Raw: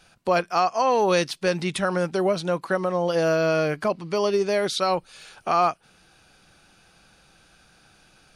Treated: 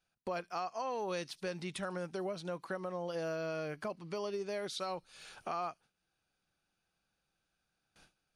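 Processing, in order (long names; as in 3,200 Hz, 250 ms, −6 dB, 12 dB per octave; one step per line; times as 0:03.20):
noise gate with hold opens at −44 dBFS
downward compressor 2 to 1, threshold −38 dBFS, peak gain reduction 12 dB
on a send: delay with a high-pass on its return 73 ms, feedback 35%, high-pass 5,000 Hz, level −18.5 dB
on the sum: level −6 dB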